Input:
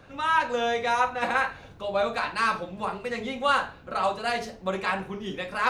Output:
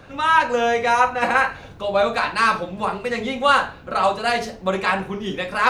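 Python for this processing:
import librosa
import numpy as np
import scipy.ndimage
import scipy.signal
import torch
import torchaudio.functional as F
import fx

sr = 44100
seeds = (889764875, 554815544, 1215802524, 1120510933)

y = fx.notch(x, sr, hz=3600.0, q=6.7, at=(0.44, 1.55))
y = y * 10.0 ** (7.0 / 20.0)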